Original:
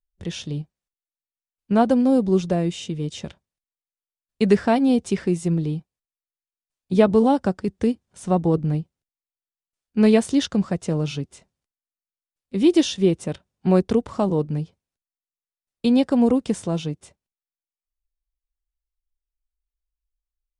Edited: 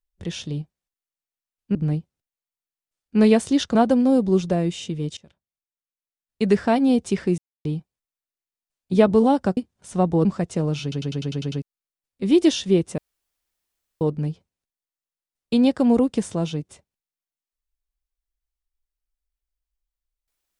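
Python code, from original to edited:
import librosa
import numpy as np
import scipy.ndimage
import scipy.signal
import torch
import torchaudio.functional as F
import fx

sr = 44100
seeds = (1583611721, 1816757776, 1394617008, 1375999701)

y = fx.edit(x, sr, fx.fade_in_from(start_s=3.17, length_s=1.67, floor_db=-22.5),
    fx.silence(start_s=5.38, length_s=0.27),
    fx.cut(start_s=7.57, length_s=0.32),
    fx.move(start_s=8.57, length_s=2.0, to_s=1.75),
    fx.stutter_over(start_s=11.14, slice_s=0.1, count=8),
    fx.room_tone_fill(start_s=13.3, length_s=1.03), tone=tone)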